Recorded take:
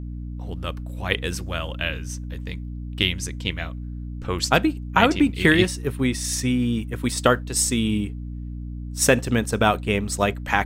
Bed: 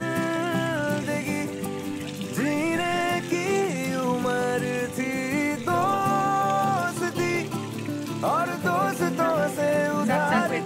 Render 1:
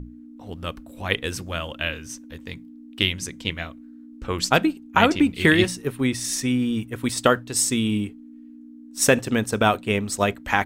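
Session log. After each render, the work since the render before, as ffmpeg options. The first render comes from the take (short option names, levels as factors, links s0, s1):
-af "bandreject=f=60:t=h:w=6,bandreject=f=120:t=h:w=6,bandreject=f=180:t=h:w=6"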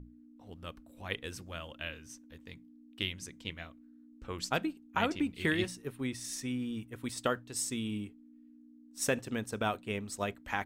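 -af "volume=0.211"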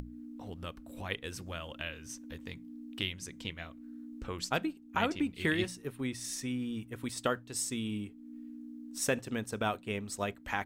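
-af "acompressor=mode=upward:threshold=0.0178:ratio=2.5"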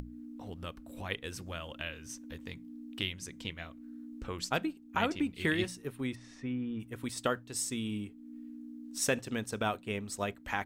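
-filter_complex "[0:a]asplit=3[s0][s1][s2];[s0]afade=t=out:st=6.14:d=0.02[s3];[s1]lowpass=2000,afade=t=in:st=6.14:d=0.02,afade=t=out:st=6.79:d=0.02[s4];[s2]afade=t=in:st=6.79:d=0.02[s5];[s3][s4][s5]amix=inputs=3:normalize=0,asettb=1/sr,asplit=3[s6][s7][s8];[s6]atrim=end=8.844[s9];[s7]atrim=start=8.84:end=9.63,asetpts=PTS-STARTPTS,afade=t=in:d=0.004:c=qsin,afade=t=out:st=0.786:d=0.004:c=qsin,equalizer=f=4600:t=o:w=1.9:g=3[s10];[s8]atrim=start=9.626[s11];[s9][s10]acrossfade=d=0.004:c1=hsin:c2=qsin[s12];[s12][s11]acrossfade=d=0.004:c1=qsin:c2=hsin"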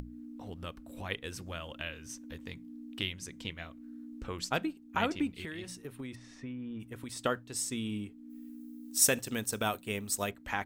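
-filter_complex "[0:a]asettb=1/sr,asplit=3[s0][s1][s2];[s0]atrim=end=5.324[s3];[s1]atrim=start=5.32:end=7.19,asetpts=PTS-STARTPTS,afade=t=in:d=0.004:c=qsin,afade=t=out:st=1.866:d=0.004:c=qsin,acompressor=threshold=0.0141:ratio=10:attack=3.2:release=140:knee=1:detection=peak[s4];[s2]atrim=start=7.186[s5];[s3][s4]acrossfade=d=0.004:c1=hsin:c2=qsin[s6];[s6][s5]acrossfade=d=0.004:c1=qsin:c2=hsin,asplit=3[s7][s8][s9];[s7]afade=t=out:st=8.29:d=0.02[s10];[s8]aemphasis=mode=production:type=50fm,afade=t=in:st=8.29:d=0.02,afade=t=out:st=10.29:d=0.02[s11];[s9]afade=t=in:st=10.29:d=0.02[s12];[s10][s11][s12]amix=inputs=3:normalize=0"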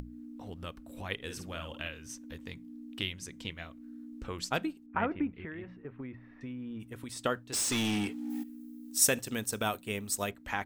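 -filter_complex "[0:a]asettb=1/sr,asplit=3[s0][s1][s2];[s0]atrim=end=1.154[s3];[s1]atrim=start=1.15:end=1.88,asetpts=PTS-STARTPTS,afade=t=in:d=0.004:c=qsin,afade=t=out:st=0.726:d=0.004:c=qsin,asplit=2[s4][s5];[s5]adelay=50,volume=0.447[s6];[s4][s6]amix=inputs=2:normalize=0,atrim=end_sample=32193[s7];[s2]atrim=start=1.876[s8];[s3][s7]acrossfade=d=0.004:c1=hsin:c2=qsin[s9];[s9][s8]acrossfade=d=0.004:c1=qsin:c2=hsin,asettb=1/sr,asplit=3[s10][s11][s12];[s10]atrim=end=4.864[s13];[s11]atrim=start=4.86:end=6.41,asetpts=PTS-STARTPTS,afade=t=in:d=0.004:c=qsin,afade=t=out:st=1.546:d=0.004:c=qsin,lowpass=f=2100:w=0.5412,lowpass=f=2100:w=1.3066[s14];[s12]atrim=start=6.406[s15];[s13][s14]acrossfade=d=0.004:c1=hsin:c2=qsin[s16];[s16][s15]acrossfade=d=0.004:c1=qsin:c2=hsin,asplit=3[s17][s18][s19];[s17]afade=t=out:st=7.52:d=0.02[s20];[s18]asplit=2[s21][s22];[s22]highpass=f=720:p=1,volume=25.1,asoftclip=type=tanh:threshold=0.0708[s23];[s21][s23]amix=inputs=2:normalize=0,lowpass=f=7100:p=1,volume=0.501,afade=t=in:st=7.52:d=0.02,afade=t=out:st=8.42:d=0.02[s24];[s19]afade=t=in:st=8.42:d=0.02[s25];[s20][s24][s25]amix=inputs=3:normalize=0"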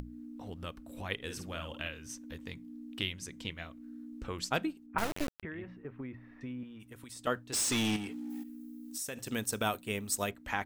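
-filter_complex "[0:a]asettb=1/sr,asplit=3[s0][s1][s2];[s0]atrim=end=4.984[s3];[s1]atrim=start=4.98:end=5.43,asetpts=PTS-STARTPTS,afade=t=in:d=0.004:c=qsin,afade=t=out:st=0.446:d=0.004:c=qsin,acrusher=bits=3:dc=4:mix=0:aa=0.000001[s4];[s2]atrim=start=5.426[s5];[s3][s4]acrossfade=d=0.004:c1=hsin:c2=qsin[s6];[s6][s5]acrossfade=d=0.004:c1=qsin:c2=hsin,asettb=1/sr,asplit=3[s7][s8][s9];[s7]atrim=end=6.634[s10];[s8]atrim=start=6.63:end=7.27,asetpts=PTS-STARTPTS,afade=t=in:d=0.004:c=qsin,afade=t=out:st=0.636:d=0.004:c=qsin,acrossover=split=820|5800[s11][s12][s13];[s11]acompressor=threshold=0.00355:ratio=4[s14];[s12]acompressor=threshold=0.00178:ratio=4[s15];[s13]acompressor=threshold=0.00398:ratio=4[s16];[s14][s15][s16]amix=inputs=3:normalize=0[s17];[s9]atrim=start=7.266[s18];[s10][s17]acrossfade=d=0.004:c1=hsin:c2=qsin[s19];[s19][s18]acrossfade=d=0.004:c1=qsin:c2=hsin,asettb=1/sr,asplit=3[s20][s21][s22];[s20]atrim=end=7.964[s23];[s21]atrim=start=7.96:end=9.26,asetpts=PTS-STARTPTS,afade=t=in:d=0.004:c=qsin,afade=t=out:st=1.296:d=0.004:c=qsin,acompressor=threshold=0.0141:ratio=5:attack=3.2:release=140:knee=1:detection=peak[s24];[s22]atrim=start=9.256[s25];[s23][s24]acrossfade=d=0.004:c1=hsin:c2=qsin[s26];[s26][s25]acrossfade=d=0.004:c1=qsin:c2=hsin"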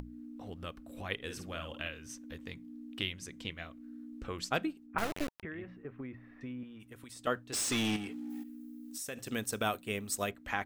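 -af "bass=f=250:g=-2,treble=f=4000:g=-3,bandreject=f=920:w=12"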